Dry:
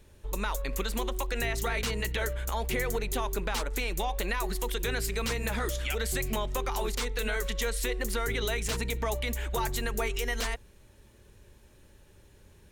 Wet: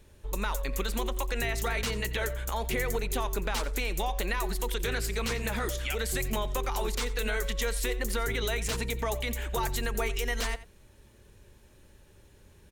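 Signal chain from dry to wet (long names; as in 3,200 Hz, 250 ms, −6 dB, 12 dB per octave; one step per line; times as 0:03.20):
single-tap delay 88 ms −16.5 dB
0:04.74–0:05.47: highs frequency-modulated by the lows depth 0.16 ms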